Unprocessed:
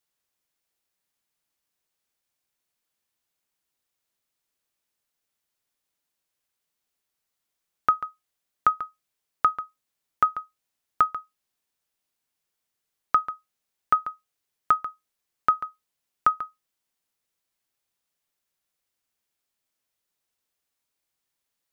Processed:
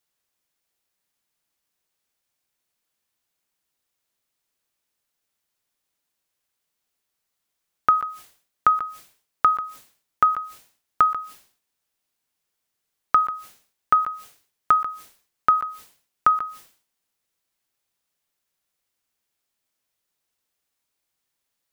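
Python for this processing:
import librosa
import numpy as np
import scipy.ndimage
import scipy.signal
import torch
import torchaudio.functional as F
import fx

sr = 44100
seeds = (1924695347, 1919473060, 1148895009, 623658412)

y = fx.sustainer(x, sr, db_per_s=120.0)
y = F.gain(torch.from_numpy(y), 2.5).numpy()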